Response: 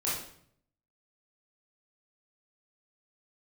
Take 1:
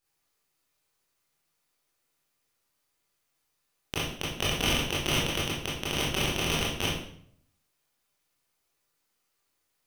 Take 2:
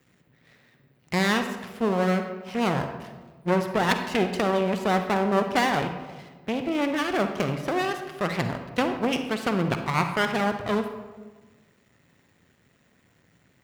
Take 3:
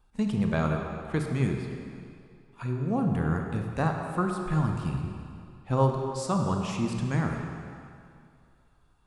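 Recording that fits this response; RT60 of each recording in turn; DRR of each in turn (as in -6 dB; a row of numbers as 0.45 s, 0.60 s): 1; 0.60 s, 1.3 s, 2.4 s; -7.5 dB, 6.5 dB, 2.0 dB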